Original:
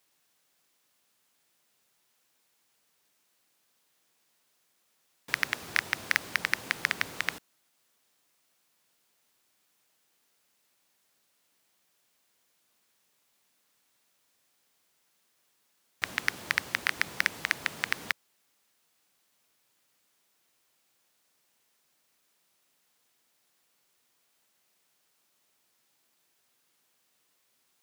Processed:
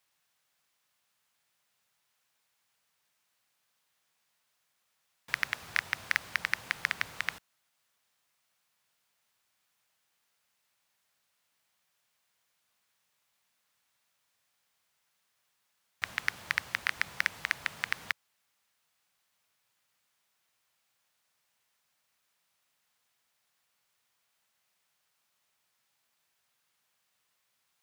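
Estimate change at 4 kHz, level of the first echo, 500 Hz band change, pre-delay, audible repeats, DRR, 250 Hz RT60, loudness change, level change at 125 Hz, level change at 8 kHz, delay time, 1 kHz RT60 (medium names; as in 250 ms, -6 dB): -3.5 dB, no echo, -7.0 dB, no reverb, no echo, no reverb, no reverb, -2.5 dB, -3.5 dB, -5.5 dB, no echo, no reverb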